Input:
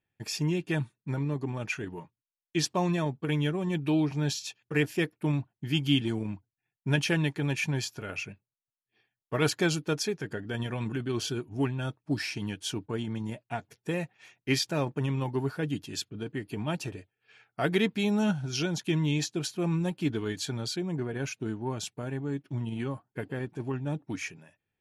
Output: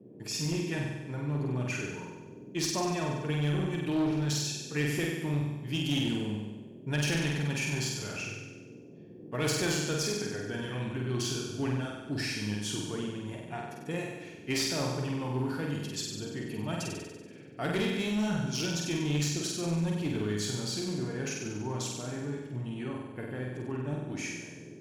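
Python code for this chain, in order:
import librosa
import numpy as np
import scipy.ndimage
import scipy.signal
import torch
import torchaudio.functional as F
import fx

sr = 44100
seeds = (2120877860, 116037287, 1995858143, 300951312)

y = fx.dynamic_eq(x, sr, hz=7000.0, q=1.1, threshold_db=-51.0, ratio=4.0, max_db=5)
y = fx.transient(y, sr, attack_db=-1, sustain_db=5)
y = fx.dmg_noise_band(y, sr, seeds[0], low_hz=110.0, high_hz=430.0, level_db=-47.0)
y = fx.room_flutter(y, sr, wall_m=8.2, rt60_s=1.1)
y = fx.clip_asym(y, sr, top_db=-22.5, bottom_db=-16.5)
y = y * librosa.db_to_amplitude(-5.0)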